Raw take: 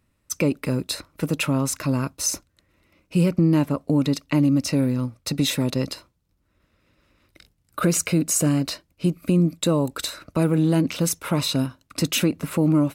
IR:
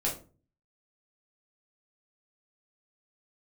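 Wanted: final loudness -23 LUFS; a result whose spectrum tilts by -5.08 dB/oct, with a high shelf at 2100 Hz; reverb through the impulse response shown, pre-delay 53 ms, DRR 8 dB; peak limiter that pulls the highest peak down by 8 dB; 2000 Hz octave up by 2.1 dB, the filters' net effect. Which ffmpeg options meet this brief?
-filter_complex "[0:a]equalizer=f=2k:t=o:g=5.5,highshelf=f=2.1k:g=-4,alimiter=limit=-16.5dB:level=0:latency=1,asplit=2[a][b];[1:a]atrim=start_sample=2205,adelay=53[c];[b][c]afir=irnorm=-1:irlink=0,volume=-14dB[d];[a][d]amix=inputs=2:normalize=0,volume=3dB"

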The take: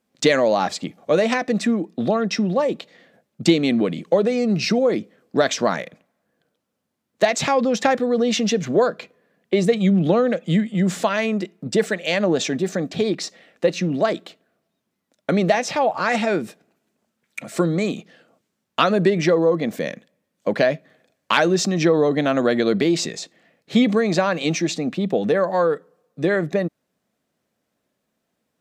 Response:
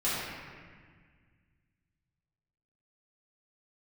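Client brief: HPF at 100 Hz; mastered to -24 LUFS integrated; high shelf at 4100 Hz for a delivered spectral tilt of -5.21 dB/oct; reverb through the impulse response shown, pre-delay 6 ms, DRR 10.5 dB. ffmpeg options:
-filter_complex "[0:a]highpass=100,highshelf=f=4.1k:g=-7.5,asplit=2[a][b];[1:a]atrim=start_sample=2205,adelay=6[c];[b][c]afir=irnorm=-1:irlink=0,volume=-20.5dB[d];[a][d]amix=inputs=2:normalize=0,volume=-3.5dB"

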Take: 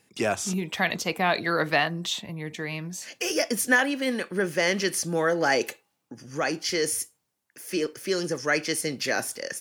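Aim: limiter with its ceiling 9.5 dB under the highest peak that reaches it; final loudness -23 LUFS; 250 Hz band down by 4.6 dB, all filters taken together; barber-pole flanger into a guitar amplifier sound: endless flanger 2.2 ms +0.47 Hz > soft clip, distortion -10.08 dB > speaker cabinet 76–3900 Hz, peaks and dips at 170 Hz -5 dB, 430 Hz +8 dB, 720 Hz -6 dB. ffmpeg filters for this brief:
-filter_complex "[0:a]equalizer=f=250:t=o:g=-7.5,alimiter=limit=-17.5dB:level=0:latency=1,asplit=2[a][b];[b]adelay=2.2,afreqshift=0.47[c];[a][c]amix=inputs=2:normalize=1,asoftclip=threshold=-31.5dB,highpass=76,equalizer=f=170:t=q:w=4:g=-5,equalizer=f=430:t=q:w=4:g=8,equalizer=f=720:t=q:w=4:g=-6,lowpass=f=3.9k:w=0.5412,lowpass=f=3.9k:w=1.3066,volume=14dB"

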